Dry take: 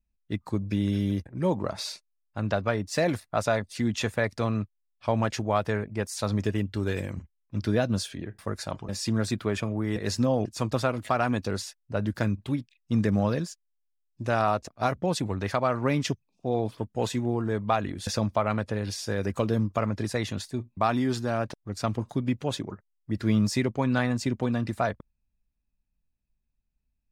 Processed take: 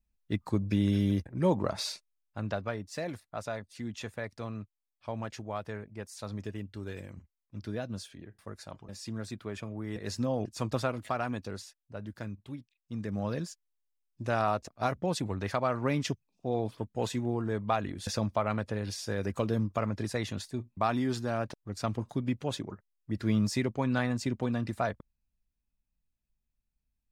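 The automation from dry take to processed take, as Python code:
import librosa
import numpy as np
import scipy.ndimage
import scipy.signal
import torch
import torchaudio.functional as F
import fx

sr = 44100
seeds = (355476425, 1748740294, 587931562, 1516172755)

y = fx.gain(x, sr, db=fx.line((1.85, -0.5), (3.05, -11.5), (9.38, -11.5), (10.74, -4.0), (12.0, -13.0), (12.99, -13.0), (13.47, -4.0)))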